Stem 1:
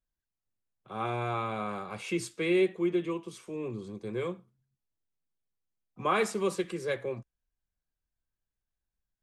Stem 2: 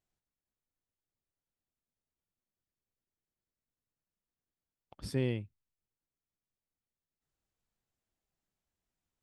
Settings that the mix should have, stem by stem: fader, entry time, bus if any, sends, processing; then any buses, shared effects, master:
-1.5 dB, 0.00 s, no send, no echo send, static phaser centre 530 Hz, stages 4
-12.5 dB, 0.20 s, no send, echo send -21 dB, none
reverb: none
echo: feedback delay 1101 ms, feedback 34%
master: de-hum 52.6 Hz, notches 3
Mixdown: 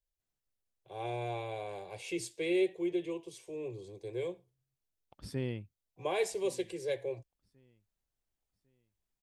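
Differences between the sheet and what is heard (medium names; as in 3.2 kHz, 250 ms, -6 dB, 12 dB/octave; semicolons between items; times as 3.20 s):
stem 2 -12.5 dB -> -4.0 dB; master: missing de-hum 52.6 Hz, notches 3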